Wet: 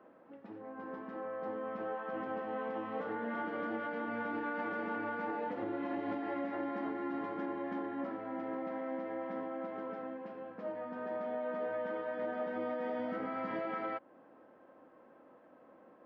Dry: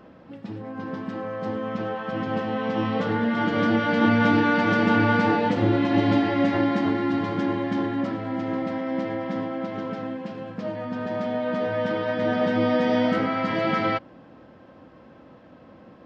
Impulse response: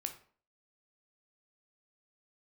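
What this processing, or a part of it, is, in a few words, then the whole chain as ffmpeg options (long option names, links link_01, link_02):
DJ mixer with the lows and highs turned down: -filter_complex "[0:a]asettb=1/sr,asplit=3[link_01][link_02][link_03];[link_01]atrim=end=12.994[link_04];[link_02]atrim=start=12.99:end=13.61,asetpts=PTS-STARTPTS,afade=type=in:duration=0.004:curve=qsin,afade=type=out:start_time=0.616:duration=0.004:curve=qsin,bass=frequency=250:gain=7,treble=frequency=4000:gain=4[link_05];[link_03]atrim=start=13.606[link_06];[link_04][link_05]acrossfade=duration=0.004:curve1=hsin:curve2=qsin[link_07];[link_07][link_06]acrossfade=duration=0.004:curve1=qsin:curve2=hsin,acrossover=split=270 2100:gain=0.0891 1 0.112[link_08][link_09][link_10];[link_08][link_09][link_10]amix=inputs=3:normalize=0,alimiter=limit=-21dB:level=0:latency=1:release=236,volume=-8dB"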